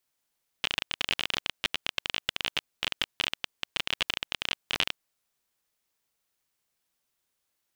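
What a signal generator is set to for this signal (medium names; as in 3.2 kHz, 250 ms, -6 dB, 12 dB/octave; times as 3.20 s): random clicks 26 per s -10 dBFS 4.37 s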